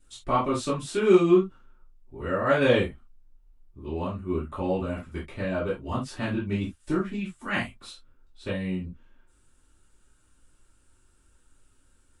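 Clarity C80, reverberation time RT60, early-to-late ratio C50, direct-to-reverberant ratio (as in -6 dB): 20.5 dB, no single decay rate, 8.0 dB, -10.5 dB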